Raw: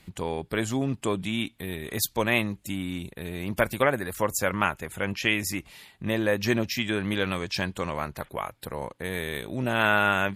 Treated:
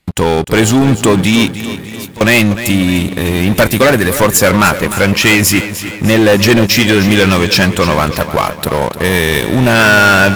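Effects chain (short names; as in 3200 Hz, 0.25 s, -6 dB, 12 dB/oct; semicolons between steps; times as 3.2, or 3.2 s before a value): sample leveller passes 5; 1.58–2.21 compressor 10:1, threshold -32 dBFS, peak gain reduction 21 dB; lo-fi delay 0.302 s, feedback 55%, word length 7-bit, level -12 dB; gain +3.5 dB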